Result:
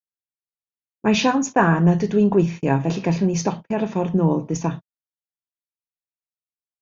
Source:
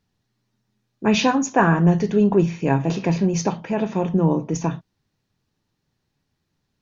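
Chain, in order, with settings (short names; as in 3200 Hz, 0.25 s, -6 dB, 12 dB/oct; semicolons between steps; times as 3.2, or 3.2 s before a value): gate -29 dBFS, range -43 dB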